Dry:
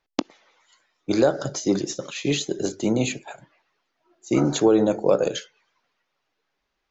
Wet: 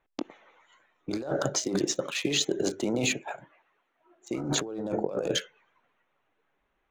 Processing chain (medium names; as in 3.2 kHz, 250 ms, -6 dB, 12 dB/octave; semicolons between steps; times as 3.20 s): local Wiener filter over 9 samples; 1.39–4.38 s: bass shelf 230 Hz -9.5 dB; compressor with a negative ratio -28 dBFS, ratio -1; trim -1.5 dB